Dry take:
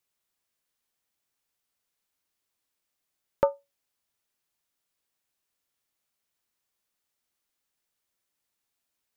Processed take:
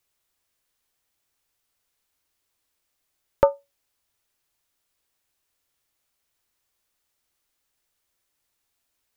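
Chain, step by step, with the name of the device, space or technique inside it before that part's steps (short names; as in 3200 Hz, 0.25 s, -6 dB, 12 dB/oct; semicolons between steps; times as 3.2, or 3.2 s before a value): low shelf boost with a cut just above (low shelf 110 Hz +6.5 dB; bell 190 Hz -5.5 dB 0.66 oct); gain +5.5 dB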